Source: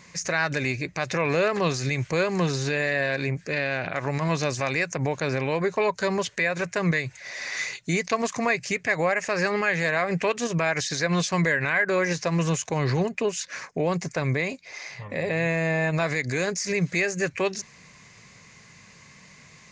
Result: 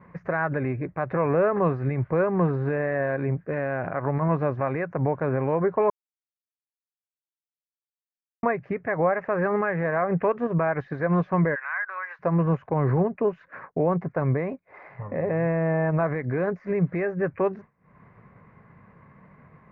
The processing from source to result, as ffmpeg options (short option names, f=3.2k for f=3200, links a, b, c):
-filter_complex "[0:a]asplit=3[a][b][c];[a]afade=t=out:st=11.54:d=0.02[d];[b]highpass=f=1.1k:w=0.5412,highpass=f=1.1k:w=1.3066,afade=t=in:st=11.54:d=0.02,afade=t=out:st=12.19:d=0.02[e];[c]afade=t=in:st=12.19:d=0.02[f];[d][e][f]amix=inputs=3:normalize=0,asplit=3[g][h][i];[g]atrim=end=5.9,asetpts=PTS-STARTPTS,afade=t=out:st=5.896:d=0.004:c=hsin[j];[h]atrim=start=5.9:end=8.43,asetpts=PTS-STARTPTS,volume=0[k];[i]atrim=start=8.43,asetpts=PTS-STARTPTS,afade=t=in:d=0.004:c=hsin[l];[j][k][l]concat=n=3:v=0:a=1,acompressor=mode=upward:threshold=-28dB:ratio=2.5,agate=range=-33dB:threshold=-31dB:ratio=3:detection=peak,lowpass=f=1.4k:w=0.5412,lowpass=f=1.4k:w=1.3066,volume=2dB"